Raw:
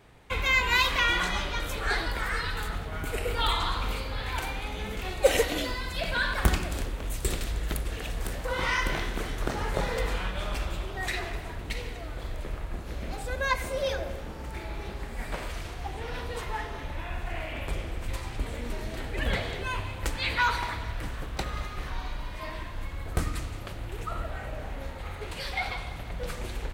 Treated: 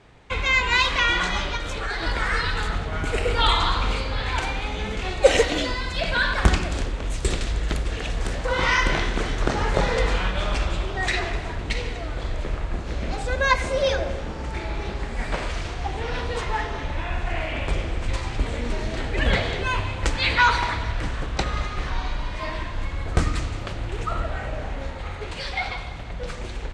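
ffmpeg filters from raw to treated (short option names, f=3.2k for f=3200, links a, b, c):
-filter_complex "[0:a]asettb=1/sr,asplit=3[a][b][c];[a]atrim=end=1.564[d];[b]atrim=start=1.56:end=2.03,asetpts=PTS-STARTPTS,afade=t=in:d=0.004:c=qsin,afade=t=out:st=0.466:d=0.004:c=qsin,acompressor=threshold=-29dB:ratio=6:attack=3.2:release=140:knee=1:detection=peak[e];[c]atrim=start=2.026[f];[d][e]acrossfade=d=0.004:c1=hsin:c2=qsin[g];[g][f]acrossfade=d=0.004:c1=qsin:c2=hsin,dynaudnorm=f=120:g=31:m=4dB,lowpass=f=7.7k:w=0.5412,lowpass=f=7.7k:w=1.3066,volume=3.5dB"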